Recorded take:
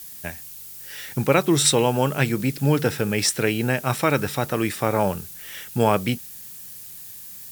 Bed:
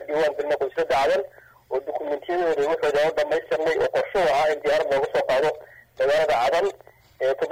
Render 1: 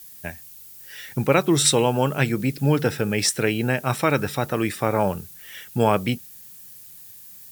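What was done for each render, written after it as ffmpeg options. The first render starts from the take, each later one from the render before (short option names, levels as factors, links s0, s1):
-af "afftdn=nr=6:nf=-40"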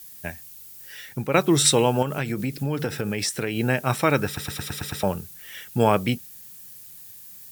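-filter_complex "[0:a]asettb=1/sr,asplit=3[s0][s1][s2];[s0]atrim=end=2.024[s3];[s1]atrim=start=2.02:end=3.57,asetpts=PTS-STARTPTS,afade=t=in:d=0.004:c=qsin,afade=t=out:st=1.546:d=0.004:c=qsin,acompressor=threshold=0.0794:ratio=4:attack=3.2:release=140:knee=1:detection=peak[s4];[s2]atrim=start=3.566[s5];[s3][s4]acrossfade=d=0.004:c1=hsin:c2=qsin[s6];[s6][s5]acrossfade=d=0.004:c1=qsin:c2=hsin,asplit=9[s7][s8][s9][s10][s11][s12][s13][s14][s15];[s7]atrim=end=1.34,asetpts=PTS-STARTPTS,afade=t=out:st=0.86:d=0.48:silence=0.375837[s16];[s8]atrim=start=1.34:end=4.372,asetpts=PTS-STARTPTS,afade=t=in:d=0.004:c=hsin:silence=0.375837[s17];[s9]atrim=start=4.258:end=4.372[s18];[s10]atrim=start=4.258:end=4.372[s19];[s11]atrim=start=4.258:end=4.372[s20];[s12]atrim=start=4.258:end=4.372[s21];[s13]atrim=start=4.258:end=4.372[s22];[s14]atrim=start=4.258:end=4.372[s23];[s15]atrim=start=5.028[s24];[s16][s17]concat=n=2:v=0:a=1[s25];[s25][s18]acrossfade=d=0.004:c1=hsin:c2=hsin[s26];[s26][s19]acrossfade=d=0.004:c1=hsin:c2=hsin[s27];[s27][s20]acrossfade=d=0.004:c1=hsin:c2=hsin[s28];[s28][s21]acrossfade=d=0.004:c1=hsin:c2=hsin[s29];[s29][s22]acrossfade=d=0.004:c1=hsin:c2=hsin[s30];[s30][s23]acrossfade=d=0.004:c1=hsin:c2=hsin[s31];[s31][s24]acrossfade=d=0.004:c1=hsin:c2=hsin"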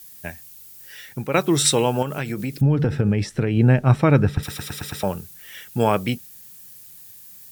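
-filter_complex "[0:a]asettb=1/sr,asplit=3[s0][s1][s2];[s0]atrim=end=2.614[s3];[s1]atrim=start=2.61:end=4.43,asetpts=PTS-STARTPTS,afade=t=in:d=0.004:c=qsin,afade=t=out:st=1.816:d=0.004:c=qsin,aemphasis=mode=reproduction:type=riaa[s4];[s2]atrim=start=4.426[s5];[s3][s4]acrossfade=d=0.004:c1=hsin:c2=qsin[s6];[s6][s5]acrossfade=d=0.004:c1=qsin:c2=hsin"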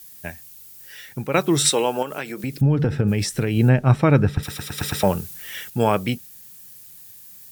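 -filter_complex "[0:a]asettb=1/sr,asplit=3[s0][s1][s2];[s0]atrim=end=1.694[s3];[s1]atrim=start=1.69:end=2.44,asetpts=PTS-STARTPTS,afade=t=in:d=0.004:c=qsin,afade=t=out:st=0.746:d=0.004:c=qsin,highpass=300[s4];[s2]atrim=start=2.436[s5];[s3][s4]acrossfade=d=0.004:c1=hsin:c2=qsin[s6];[s6][s5]acrossfade=d=0.004:c1=qsin:c2=hsin,asplit=3[s7][s8][s9];[s7]afade=t=out:st=3.07:d=0.02[s10];[s8]aemphasis=mode=production:type=75fm,afade=t=in:st=3.07:d=0.02,afade=t=out:st=3.68:d=0.02[s11];[s9]afade=t=in:st=3.68:d=0.02[s12];[s10][s11][s12]amix=inputs=3:normalize=0,asettb=1/sr,asplit=3[s13][s14][s15];[s13]atrim=end=4.784[s16];[s14]atrim=start=4.78:end=5.7,asetpts=PTS-STARTPTS,afade=t=in:d=0.004:c=qsin,afade=t=out:st=0.916:d=0.004:c=qsin,acontrast=44[s17];[s15]atrim=start=5.696[s18];[s16][s17]acrossfade=d=0.004:c1=hsin:c2=qsin[s19];[s19][s18]acrossfade=d=0.004:c1=qsin:c2=hsin"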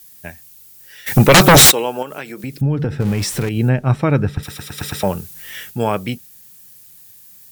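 -filter_complex "[0:a]asplit=3[s0][s1][s2];[s0]afade=t=out:st=1.06:d=0.02[s3];[s1]aeval=exprs='0.708*sin(PI/2*7.94*val(0)/0.708)':c=same,afade=t=in:st=1.06:d=0.02,afade=t=out:st=1.7:d=0.02[s4];[s2]afade=t=in:st=1.7:d=0.02[s5];[s3][s4][s5]amix=inputs=3:normalize=0,asettb=1/sr,asplit=3[s6][s7][s8];[s6]atrim=end=3.004[s9];[s7]atrim=start=3:end=3.49,asetpts=PTS-STARTPTS,afade=t=in:d=0.004:c=qsin,afade=t=out:st=0.486:d=0.004:c=qsin,aeval=exprs='val(0)+0.5*0.0631*sgn(val(0))':c=same[s10];[s8]atrim=start=3.486[s11];[s9][s10]acrossfade=d=0.004:c1=hsin:c2=qsin[s12];[s12][s11]acrossfade=d=0.004:c1=qsin:c2=hsin,asettb=1/sr,asplit=3[s13][s14][s15];[s13]atrim=end=5.344[s16];[s14]atrim=start=5.34:end=5.75,asetpts=PTS-STARTPTS,afade=t=in:d=0.004:c=qsin,afade=t=out:st=0.406:d=0.004:c=qsin,asplit=2[s17][s18];[s18]adelay=20,volume=0.631[s19];[s17][s19]amix=inputs=2:normalize=0,atrim=end_sample=18081[s20];[s15]atrim=start=5.746[s21];[s16][s20]acrossfade=d=0.004:c1=hsin:c2=qsin[s22];[s22][s21]acrossfade=d=0.004:c1=qsin:c2=hsin"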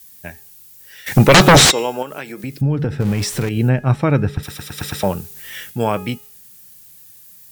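-filter_complex "[0:a]bandreject=f=417.2:t=h:w=4,bandreject=f=834.4:t=h:w=4,bandreject=f=1251.6:t=h:w=4,bandreject=f=1668.8:t=h:w=4,bandreject=f=2086:t=h:w=4,bandreject=f=2503.2:t=h:w=4,bandreject=f=2920.4:t=h:w=4,bandreject=f=3337.6:t=h:w=4,bandreject=f=3754.8:t=h:w=4,bandreject=f=4172:t=h:w=4,bandreject=f=4589.2:t=h:w=4,bandreject=f=5006.4:t=h:w=4,bandreject=f=5423.6:t=h:w=4,bandreject=f=5840.8:t=h:w=4,bandreject=f=6258:t=h:w=4,bandreject=f=6675.2:t=h:w=4,bandreject=f=7092.4:t=h:w=4,bandreject=f=7509.6:t=h:w=4,acrossover=split=8100[s0][s1];[s1]acompressor=threshold=0.0355:ratio=4:attack=1:release=60[s2];[s0][s2]amix=inputs=2:normalize=0"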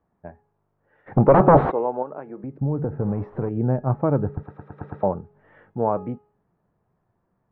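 -af "lowpass=f=1000:w=0.5412,lowpass=f=1000:w=1.3066,lowshelf=f=310:g=-8.5"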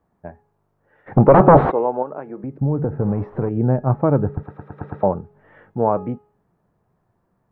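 -af "volume=1.58,alimiter=limit=0.891:level=0:latency=1"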